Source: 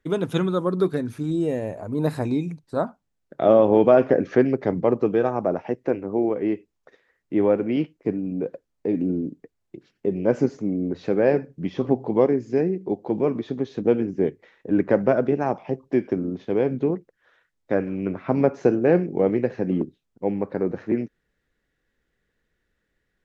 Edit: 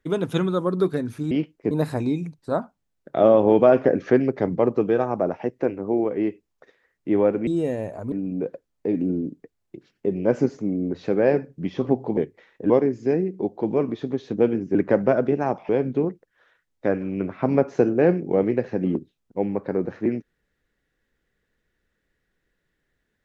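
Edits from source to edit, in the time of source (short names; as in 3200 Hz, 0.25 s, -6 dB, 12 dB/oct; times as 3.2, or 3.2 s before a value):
1.31–1.96 swap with 7.72–8.12
14.22–14.75 move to 12.17
15.69–16.55 cut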